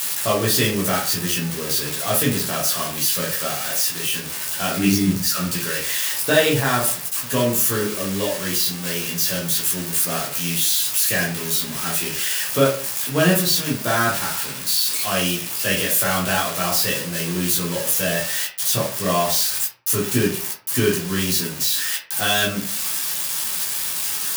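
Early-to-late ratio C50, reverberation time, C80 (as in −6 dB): 6.5 dB, 0.45 s, 11.0 dB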